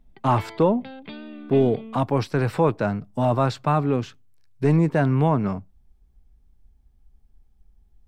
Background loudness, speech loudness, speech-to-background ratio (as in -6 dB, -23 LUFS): -40.5 LUFS, -22.5 LUFS, 18.0 dB